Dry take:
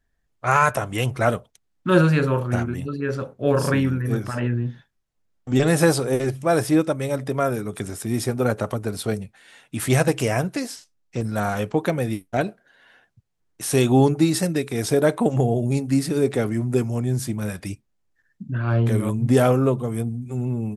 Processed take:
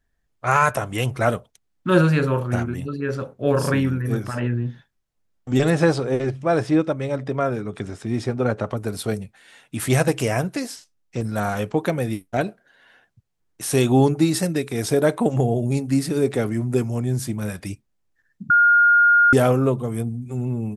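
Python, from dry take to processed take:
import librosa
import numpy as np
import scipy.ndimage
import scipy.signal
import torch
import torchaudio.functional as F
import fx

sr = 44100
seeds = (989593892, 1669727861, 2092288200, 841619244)

y = fx.air_absorb(x, sr, metres=110.0, at=(5.7, 8.77))
y = fx.edit(y, sr, fx.bleep(start_s=18.5, length_s=0.83, hz=1420.0, db=-11.0), tone=tone)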